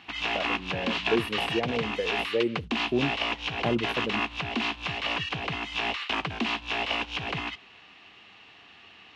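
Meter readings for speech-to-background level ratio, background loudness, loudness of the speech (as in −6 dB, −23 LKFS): −2.5 dB, −29.5 LKFS, −32.0 LKFS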